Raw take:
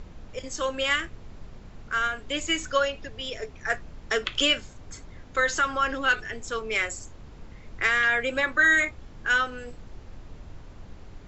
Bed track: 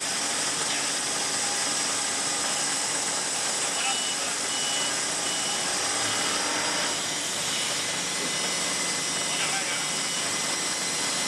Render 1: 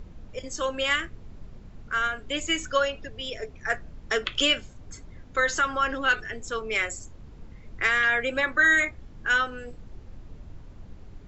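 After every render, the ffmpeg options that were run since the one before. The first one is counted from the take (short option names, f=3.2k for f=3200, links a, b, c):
-af "afftdn=nr=6:nf=-46"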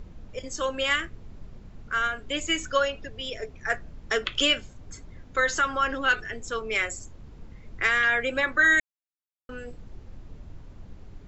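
-filter_complex "[0:a]asplit=3[a][b][c];[a]atrim=end=8.8,asetpts=PTS-STARTPTS,afade=t=out:st=8.796:d=0.004:c=hsin[d];[b]atrim=start=8.8:end=9.49,asetpts=PTS-STARTPTS,volume=0[e];[c]atrim=start=9.49,asetpts=PTS-STARTPTS,afade=t=in:d=0.004:c=hsin[f];[d][e][f]concat=n=3:v=0:a=1"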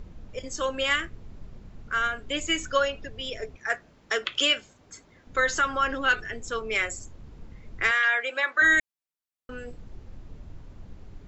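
-filter_complex "[0:a]asettb=1/sr,asplit=3[a][b][c];[a]atrim=end=3.564[d];[b]atrim=start=3.56:end=5.27,asetpts=PTS-STARTPTS,afade=t=in:d=0.004:c=qsin,afade=t=out:st=1.706:d=0.004:c=qsin,highpass=f=420:p=1[e];[c]atrim=start=5.266[f];[d][e]acrossfade=d=0.004:c1=hsin:c2=qsin[g];[g][f]acrossfade=d=0.004:c1=qsin:c2=hsin,asettb=1/sr,asplit=3[h][i][j];[h]atrim=end=7.914[k];[i]atrim=start=7.91:end=8.62,asetpts=PTS-STARTPTS,afade=t=in:d=0.004:c=qsin,afade=t=out:st=0.706:d=0.004:c=qsin,highpass=640,lowpass=7k[l];[j]atrim=start=8.616[m];[k][l]acrossfade=d=0.004:c1=hsin:c2=qsin[n];[n][m]acrossfade=d=0.004:c1=qsin:c2=hsin"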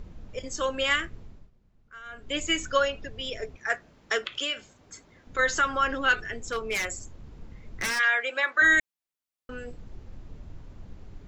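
-filter_complex "[0:a]asplit=3[a][b][c];[a]afade=t=out:st=4.21:d=0.02[d];[b]acompressor=threshold=-32dB:ratio=2:attack=3.2:release=140:knee=1:detection=peak,afade=t=in:st=4.21:d=0.02,afade=t=out:st=5.38:d=0.02[e];[c]afade=t=in:st=5.38:d=0.02[f];[d][e][f]amix=inputs=3:normalize=0,asplit=3[g][h][i];[g]afade=t=out:st=6.3:d=0.02[j];[h]aeval=exprs='0.0794*(abs(mod(val(0)/0.0794+3,4)-2)-1)':c=same,afade=t=in:st=6.3:d=0.02,afade=t=out:st=7.98:d=0.02[k];[i]afade=t=in:st=7.98:d=0.02[l];[j][k][l]amix=inputs=3:normalize=0,asplit=3[m][n][o];[m]atrim=end=1.51,asetpts=PTS-STARTPTS,afade=t=out:st=1.19:d=0.32:silence=0.112202[p];[n]atrim=start=1.51:end=2.05,asetpts=PTS-STARTPTS,volume=-19dB[q];[o]atrim=start=2.05,asetpts=PTS-STARTPTS,afade=t=in:d=0.32:silence=0.112202[r];[p][q][r]concat=n=3:v=0:a=1"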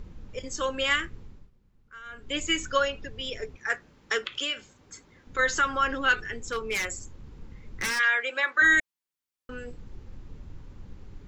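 -af "equalizer=f=660:t=o:w=0.2:g=-11"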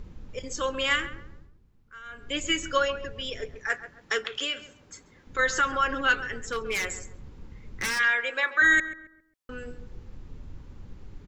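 -filter_complex "[0:a]asplit=2[a][b];[b]adelay=135,lowpass=f=1.3k:p=1,volume=-11dB,asplit=2[c][d];[d]adelay=135,lowpass=f=1.3k:p=1,volume=0.4,asplit=2[e][f];[f]adelay=135,lowpass=f=1.3k:p=1,volume=0.4,asplit=2[g][h];[h]adelay=135,lowpass=f=1.3k:p=1,volume=0.4[i];[a][c][e][g][i]amix=inputs=5:normalize=0"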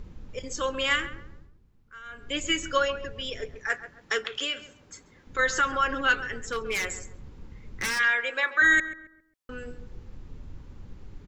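-af anull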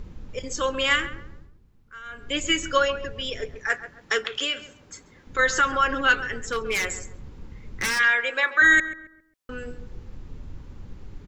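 -af "volume=3.5dB"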